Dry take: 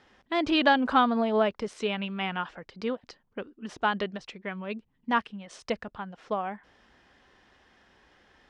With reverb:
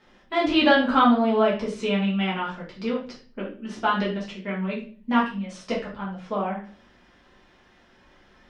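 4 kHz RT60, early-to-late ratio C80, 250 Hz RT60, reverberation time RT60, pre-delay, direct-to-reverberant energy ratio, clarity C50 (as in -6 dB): 0.35 s, 12.0 dB, 0.65 s, 0.40 s, 5 ms, -6.5 dB, 7.0 dB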